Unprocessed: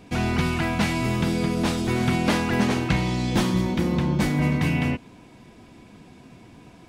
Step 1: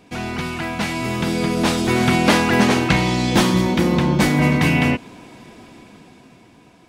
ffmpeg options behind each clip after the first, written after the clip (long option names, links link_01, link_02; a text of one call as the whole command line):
ffmpeg -i in.wav -af "lowshelf=frequency=160:gain=-9,dynaudnorm=framelen=240:gausssize=11:maxgain=11.5dB" out.wav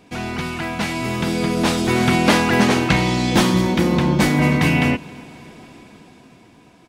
ffmpeg -i in.wav -af "aecho=1:1:270|540|810|1080:0.0631|0.036|0.0205|0.0117" out.wav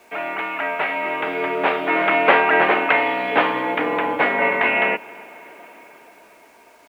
ffmpeg -i in.wav -af "highpass=frequency=470:width_type=q:width=0.5412,highpass=frequency=470:width_type=q:width=1.307,lowpass=frequency=2700:width_type=q:width=0.5176,lowpass=frequency=2700:width_type=q:width=0.7071,lowpass=frequency=2700:width_type=q:width=1.932,afreqshift=-51,acrusher=bits=9:mix=0:aa=0.000001,volume=4.5dB" out.wav